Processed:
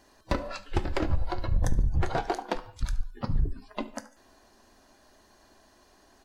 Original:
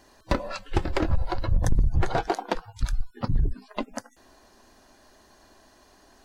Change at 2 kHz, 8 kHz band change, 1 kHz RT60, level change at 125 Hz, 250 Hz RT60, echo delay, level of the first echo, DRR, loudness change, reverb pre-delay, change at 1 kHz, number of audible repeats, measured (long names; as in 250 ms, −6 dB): −3.0 dB, can't be measured, 0.50 s, −3.0 dB, 0.50 s, 72 ms, −20.5 dB, 11.5 dB, −3.0 dB, 14 ms, −3.0 dB, 2